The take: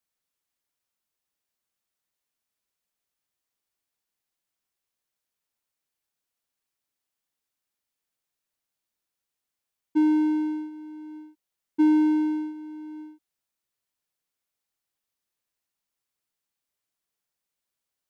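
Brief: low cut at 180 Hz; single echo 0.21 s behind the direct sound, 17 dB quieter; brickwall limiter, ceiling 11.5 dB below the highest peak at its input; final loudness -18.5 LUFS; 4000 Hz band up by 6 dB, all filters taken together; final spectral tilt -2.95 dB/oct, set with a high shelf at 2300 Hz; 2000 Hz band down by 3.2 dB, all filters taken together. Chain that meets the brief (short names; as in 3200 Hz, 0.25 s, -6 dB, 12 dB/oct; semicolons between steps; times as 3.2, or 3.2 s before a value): HPF 180 Hz; bell 2000 Hz -8.5 dB; high shelf 2300 Hz +4.5 dB; bell 4000 Hz +6 dB; limiter -26.5 dBFS; echo 0.21 s -17 dB; gain +15.5 dB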